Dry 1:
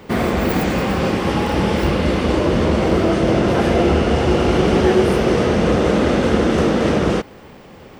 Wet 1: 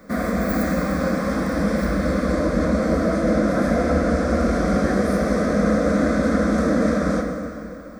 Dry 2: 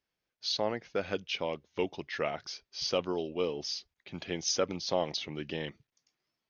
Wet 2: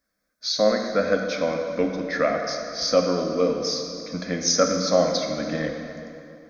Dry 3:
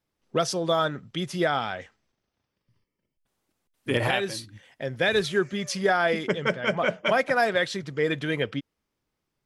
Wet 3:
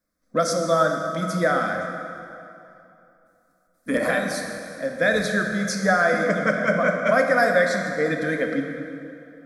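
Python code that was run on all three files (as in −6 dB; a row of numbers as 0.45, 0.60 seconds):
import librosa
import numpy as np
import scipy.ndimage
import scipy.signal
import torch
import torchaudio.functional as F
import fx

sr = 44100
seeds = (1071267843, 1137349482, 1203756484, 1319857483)

y = fx.fixed_phaser(x, sr, hz=580.0, stages=8)
y = fx.rev_plate(y, sr, seeds[0], rt60_s=2.8, hf_ratio=0.7, predelay_ms=0, drr_db=2.5)
y = librosa.util.normalize(y) * 10.0 ** (-6 / 20.0)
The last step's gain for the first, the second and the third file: −3.0, +12.0, +4.5 decibels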